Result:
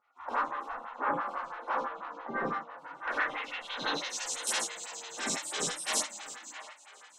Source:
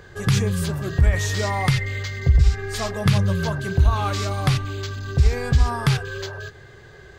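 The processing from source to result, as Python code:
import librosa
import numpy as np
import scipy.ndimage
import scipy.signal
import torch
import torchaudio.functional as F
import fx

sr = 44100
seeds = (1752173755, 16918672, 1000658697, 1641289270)

p1 = fx.notch(x, sr, hz=4600.0, q=5.5)
p2 = fx.spec_gate(p1, sr, threshold_db=-30, keep='weak')
p3 = fx.filter_sweep_lowpass(p2, sr, from_hz=1200.0, to_hz=8400.0, start_s=2.88, end_s=4.39, q=3.1)
p4 = p3 + fx.echo_wet_bandpass(p3, sr, ms=672, feedback_pct=47, hz=1400.0, wet_db=-9.5, dry=0)
p5 = fx.rev_gated(p4, sr, seeds[0], gate_ms=120, shape='flat', drr_db=-6.5)
y = fx.stagger_phaser(p5, sr, hz=6.0)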